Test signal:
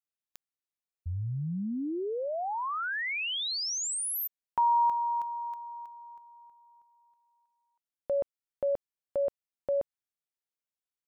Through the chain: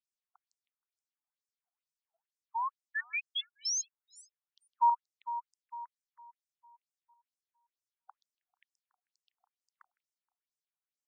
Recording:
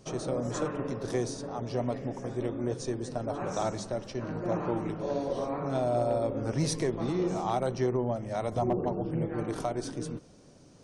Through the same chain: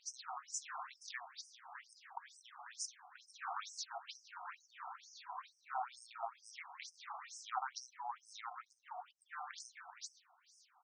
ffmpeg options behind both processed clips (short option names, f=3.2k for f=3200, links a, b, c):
-af "aecho=1:1:158|316|474|632:0.0794|0.0413|0.0215|0.0112,afftfilt=real='re*between(b*sr/1024,960*pow(7100/960,0.5+0.5*sin(2*PI*2.2*pts/sr))/1.41,960*pow(7100/960,0.5+0.5*sin(2*PI*2.2*pts/sr))*1.41)':imag='im*between(b*sr/1024,960*pow(7100/960,0.5+0.5*sin(2*PI*2.2*pts/sr))/1.41,960*pow(7100/960,0.5+0.5*sin(2*PI*2.2*pts/sr))*1.41)':win_size=1024:overlap=0.75,volume=1dB"